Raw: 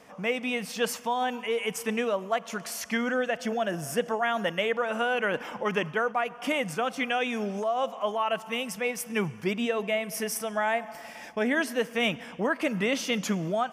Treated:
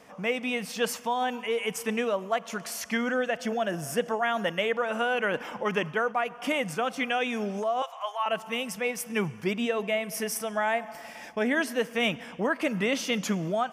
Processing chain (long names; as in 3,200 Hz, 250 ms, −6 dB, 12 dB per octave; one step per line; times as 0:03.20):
0:07.82–0:08.26: high-pass filter 760 Hz 24 dB per octave